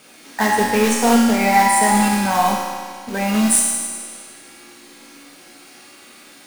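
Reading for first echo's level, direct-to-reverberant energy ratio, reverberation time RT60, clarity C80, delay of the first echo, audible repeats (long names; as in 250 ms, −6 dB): no echo audible, −4.5 dB, 1.9 s, 1.5 dB, no echo audible, no echo audible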